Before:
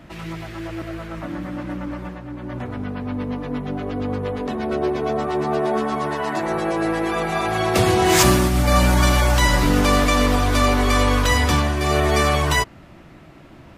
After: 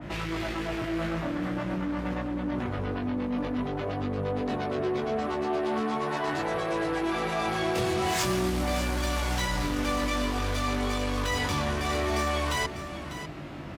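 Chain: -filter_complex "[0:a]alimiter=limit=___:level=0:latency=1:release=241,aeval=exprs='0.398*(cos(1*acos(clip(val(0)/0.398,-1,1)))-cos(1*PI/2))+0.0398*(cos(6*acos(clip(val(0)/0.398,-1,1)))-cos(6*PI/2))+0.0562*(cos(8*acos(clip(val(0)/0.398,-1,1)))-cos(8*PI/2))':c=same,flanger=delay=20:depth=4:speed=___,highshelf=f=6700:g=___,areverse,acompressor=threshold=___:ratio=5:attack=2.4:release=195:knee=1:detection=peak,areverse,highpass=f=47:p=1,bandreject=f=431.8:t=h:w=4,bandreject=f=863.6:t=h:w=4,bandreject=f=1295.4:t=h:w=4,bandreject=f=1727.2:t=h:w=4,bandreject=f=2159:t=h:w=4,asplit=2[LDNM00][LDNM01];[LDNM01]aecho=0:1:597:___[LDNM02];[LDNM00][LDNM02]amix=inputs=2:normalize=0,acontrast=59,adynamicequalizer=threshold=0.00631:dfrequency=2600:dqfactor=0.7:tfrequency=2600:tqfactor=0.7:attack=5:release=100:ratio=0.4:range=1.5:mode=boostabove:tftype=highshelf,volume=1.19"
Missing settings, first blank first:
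0.398, 0.45, -7.5, 0.0224, 0.266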